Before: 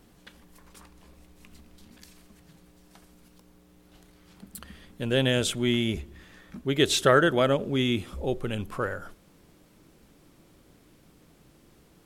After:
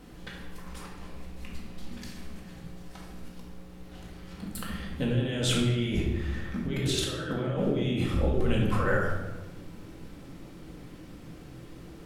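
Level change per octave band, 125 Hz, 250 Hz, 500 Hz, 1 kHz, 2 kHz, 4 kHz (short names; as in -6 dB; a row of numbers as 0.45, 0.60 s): +3.0, -1.0, -5.5, -5.5, -4.5, -4.5 dB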